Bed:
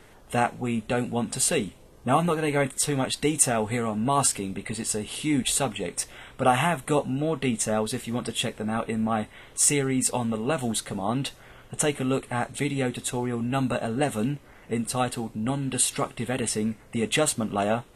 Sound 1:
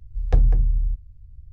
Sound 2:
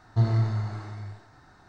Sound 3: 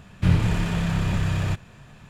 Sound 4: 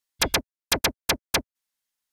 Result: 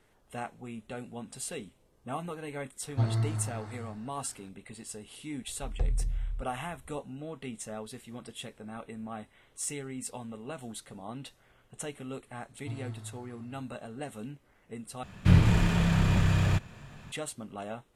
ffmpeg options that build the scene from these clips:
-filter_complex "[2:a]asplit=2[a][b];[0:a]volume=-14.5dB,asplit=2[c][d];[c]atrim=end=15.034[e];[3:a]atrim=end=2.09,asetpts=PTS-STARTPTS,volume=-1dB[f];[d]atrim=start=17.116[g];[a]atrim=end=1.68,asetpts=PTS-STARTPTS,volume=-5.5dB,afade=t=in:d=0.004:c=hsin,afade=t=out:st=1.676:d=0.004:c=hsin,adelay=2810[h];[1:a]atrim=end=1.52,asetpts=PTS-STARTPTS,volume=-12.5dB,afade=t=in:d=0.004:c=hsin,afade=t=out:st=1.516:d=0.004:c=hsin,adelay=5470[i];[b]atrim=end=1.68,asetpts=PTS-STARTPTS,volume=-17.5dB,afade=t=in:d=0.004:c=hsin,afade=t=out:st=1.676:d=0.004:c=hsin,adelay=12500[j];[e][f]acrossfade=d=0.004:c1=hsin:c2=hsin[k];[k][g]acrossfade=d=0.004:c1=hsin:c2=hsin[l];[l][h][i][j]amix=inputs=4:normalize=0"

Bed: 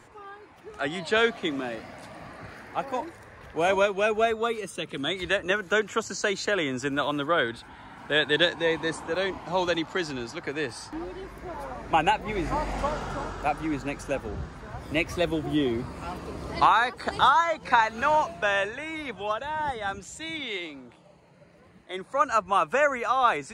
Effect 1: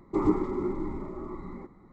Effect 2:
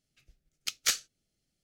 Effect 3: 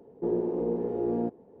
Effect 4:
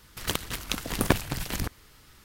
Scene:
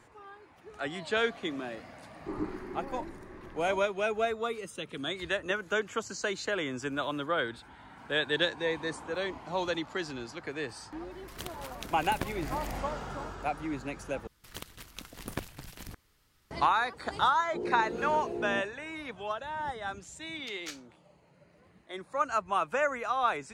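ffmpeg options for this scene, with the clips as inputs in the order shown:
-filter_complex "[4:a]asplit=2[a][b];[0:a]volume=-6dB[c];[2:a]lowpass=f=3.2k:p=1[d];[c]asplit=2[e][f];[e]atrim=end=14.274[g];[b]atrim=end=2.24,asetpts=PTS-STARTPTS,volume=-14dB[h];[f]atrim=start=16.506[i];[1:a]atrim=end=1.92,asetpts=PTS-STARTPTS,volume=-11dB,afade=t=in:d=0.004:c=hsin,afade=t=out:st=1.916:d=0.004:c=hsin,adelay=2130[j];[a]atrim=end=2.24,asetpts=PTS-STARTPTS,volume=-13dB,afade=t=in:d=0.004:c=hsin,afade=t=out:st=2.236:d=0.004:c=hsin,adelay=11110[k];[3:a]atrim=end=1.6,asetpts=PTS-STARTPTS,volume=-7.5dB,afade=t=in:d=0.004:c=hsin,afade=t=out:st=1.596:d=0.004:c=hsin,adelay=763812S[l];[d]atrim=end=1.63,asetpts=PTS-STARTPTS,volume=-11dB,afade=t=in:d=0.004:c=hsin,afade=t=out:st=1.626:d=0.004:c=hsin,adelay=19800[m];[g][h]acrossfade=d=0.004:c1=hsin:c2=hsin[n];[n][i]acrossfade=d=0.004:c1=hsin:c2=hsin[o];[o][j][k][l][m]amix=inputs=5:normalize=0"

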